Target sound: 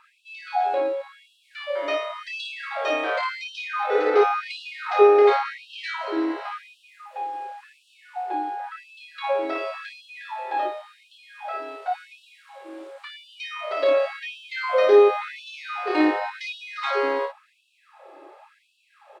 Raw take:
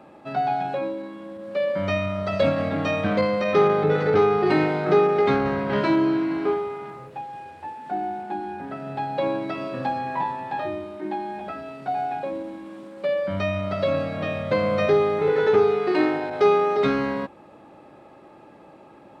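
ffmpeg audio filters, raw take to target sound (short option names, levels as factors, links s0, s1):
-af "aecho=1:1:29|56:0.631|0.531,afftfilt=real='re*gte(b*sr/1024,270*pow(2600/270,0.5+0.5*sin(2*PI*0.92*pts/sr)))':imag='im*gte(b*sr/1024,270*pow(2600/270,0.5+0.5*sin(2*PI*0.92*pts/sr)))':win_size=1024:overlap=0.75"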